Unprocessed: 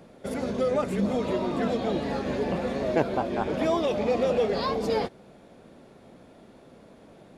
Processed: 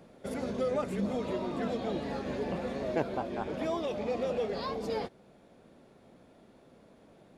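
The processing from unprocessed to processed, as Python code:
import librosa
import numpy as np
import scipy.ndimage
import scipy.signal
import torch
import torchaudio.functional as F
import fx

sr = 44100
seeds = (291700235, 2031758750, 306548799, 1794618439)

y = fx.rider(x, sr, range_db=4, speed_s=2.0)
y = y * librosa.db_to_amplitude(-7.0)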